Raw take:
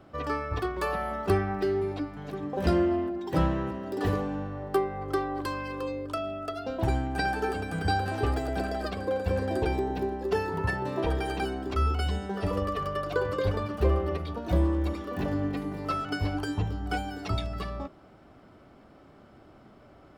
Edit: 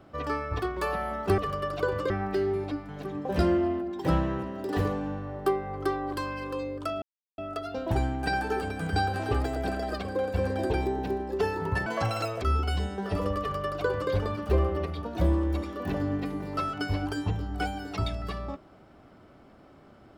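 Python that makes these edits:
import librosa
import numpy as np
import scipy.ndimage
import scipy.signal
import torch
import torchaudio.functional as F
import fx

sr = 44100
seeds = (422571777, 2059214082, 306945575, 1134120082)

y = fx.edit(x, sr, fx.insert_silence(at_s=6.3, length_s=0.36),
    fx.speed_span(start_s=10.78, length_s=0.95, speed=1.71),
    fx.duplicate(start_s=12.71, length_s=0.72, to_s=1.38), tone=tone)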